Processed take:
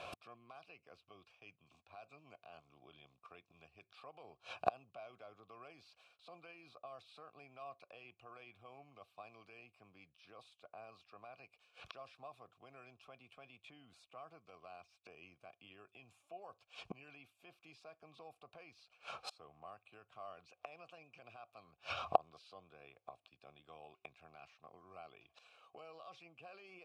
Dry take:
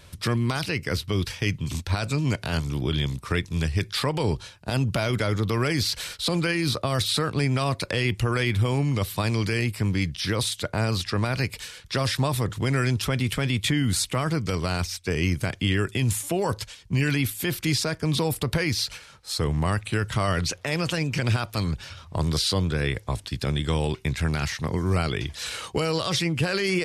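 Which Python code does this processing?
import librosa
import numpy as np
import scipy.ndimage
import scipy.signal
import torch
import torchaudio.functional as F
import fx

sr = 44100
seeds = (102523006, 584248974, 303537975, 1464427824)

y = fx.gate_flip(x, sr, shuts_db=-28.0, range_db=-34)
y = fx.vowel_filter(y, sr, vowel='a')
y = y * 10.0 ** (18.0 / 20.0)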